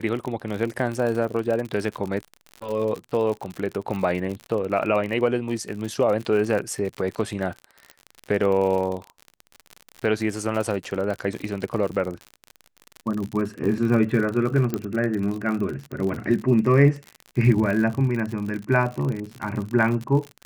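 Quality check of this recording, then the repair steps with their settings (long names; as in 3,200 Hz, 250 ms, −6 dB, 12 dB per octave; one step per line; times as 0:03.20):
surface crackle 57 per second −28 dBFS
0:14.74: click −12 dBFS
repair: click removal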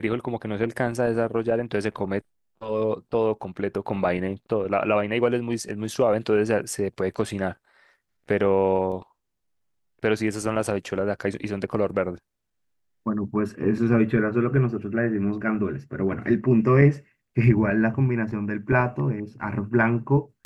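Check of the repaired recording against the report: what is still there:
none of them is left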